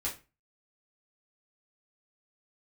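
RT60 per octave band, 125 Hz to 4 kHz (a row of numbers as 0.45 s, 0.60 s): 0.40 s, 0.35 s, 0.30 s, 0.30 s, 0.30 s, 0.25 s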